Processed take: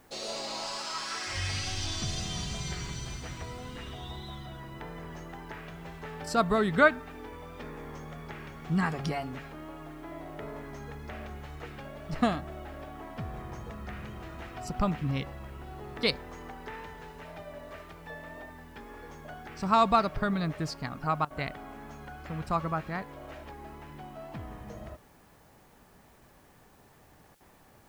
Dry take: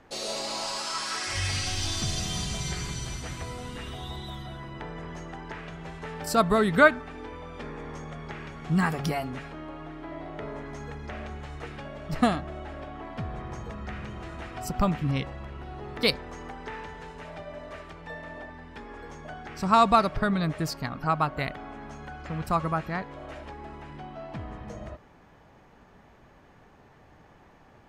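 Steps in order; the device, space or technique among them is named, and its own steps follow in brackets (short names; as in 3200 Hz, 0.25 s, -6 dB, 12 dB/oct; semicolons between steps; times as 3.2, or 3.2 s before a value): worn cassette (LPF 7700 Hz; wow and flutter 27 cents; level dips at 21.25/27.35, 54 ms -16 dB; white noise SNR 33 dB); gain -3.5 dB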